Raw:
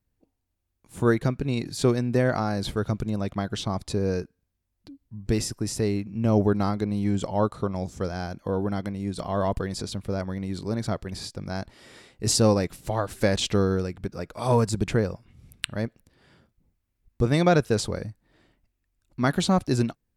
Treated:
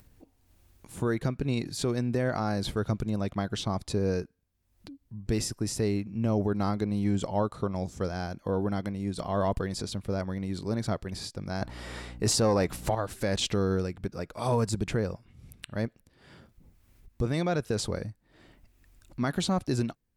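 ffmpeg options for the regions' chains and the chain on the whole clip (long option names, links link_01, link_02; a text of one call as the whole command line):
ffmpeg -i in.wav -filter_complex "[0:a]asettb=1/sr,asplit=3[link_01][link_02][link_03];[link_01]atrim=end=11.614[link_04];[link_02]atrim=start=11.61:end=12.95,asetpts=PTS-STARTPTS,afade=type=in:duration=0.004:curve=qsin,afade=type=out:start_time=1.336:duration=0.004:curve=qsin,equalizer=frequency=950:width_type=o:width=1.9:gain=6.5,acontrast=64,aeval=exprs='val(0)+0.01*(sin(2*PI*60*n/s)+sin(2*PI*2*60*n/s)/2+sin(2*PI*3*60*n/s)/3+sin(2*PI*4*60*n/s)/4+sin(2*PI*5*60*n/s)/5)':channel_layout=same[link_05];[link_03]atrim=start=12.946[link_06];[link_04][link_05]acrossfade=duration=0.004:curve1=hsin:curve2=qsin[link_07];[link_07][link_06]acrossfade=duration=0.004:curve1=qsin:curve2=hsin,alimiter=limit=-15dB:level=0:latency=1:release=118,acompressor=mode=upward:threshold=-40dB:ratio=2.5,volume=-2dB" out.wav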